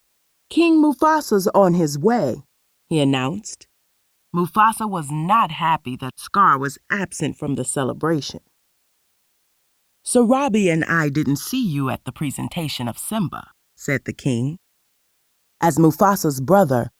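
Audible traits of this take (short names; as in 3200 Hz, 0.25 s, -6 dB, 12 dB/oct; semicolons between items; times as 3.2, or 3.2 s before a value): phasing stages 6, 0.14 Hz, lowest notch 420–2900 Hz; a quantiser's noise floor 12-bit, dither triangular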